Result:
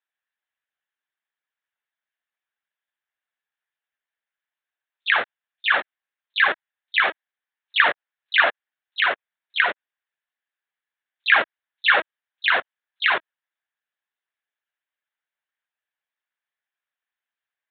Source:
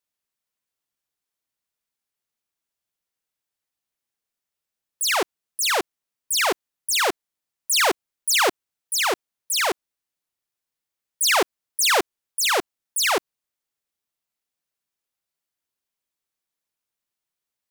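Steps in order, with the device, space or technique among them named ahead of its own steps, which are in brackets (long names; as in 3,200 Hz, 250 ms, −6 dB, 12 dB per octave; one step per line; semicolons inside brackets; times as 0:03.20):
talking toy (linear-prediction vocoder at 8 kHz; high-pass filter 520 Hz 12 dB per octave; parametric band 1,700 Hz +11 dB 0.49 octaves)
level −1 dB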